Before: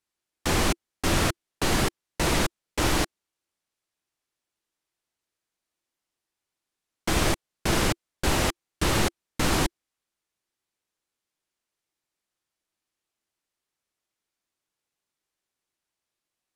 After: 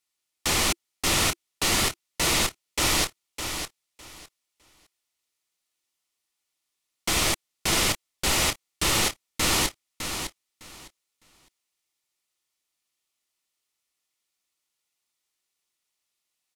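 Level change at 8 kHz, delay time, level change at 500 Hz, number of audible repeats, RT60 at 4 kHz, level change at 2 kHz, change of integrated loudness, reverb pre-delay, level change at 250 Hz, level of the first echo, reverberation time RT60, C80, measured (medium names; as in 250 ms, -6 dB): +6.5 dB, 607 ms, -3.5 dB, 2, no reverb, +2.0 dB, +2.0 dB, no reverb, -4.5 dB, -8.0 dB, no reverb, no reverb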